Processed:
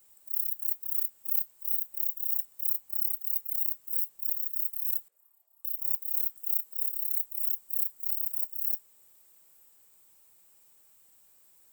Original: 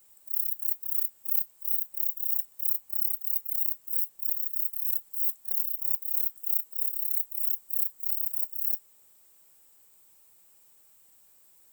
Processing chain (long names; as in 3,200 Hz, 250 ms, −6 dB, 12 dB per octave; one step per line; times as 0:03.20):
0:05.08–0:05.65: envelope filter 470–1,100 Hz, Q 4.7, up, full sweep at −23 dBFS
echo through a band-pass that steps 188 ms, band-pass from 1,400 Hz, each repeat 0.7 octaves, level −10 dB
level −1.5 dB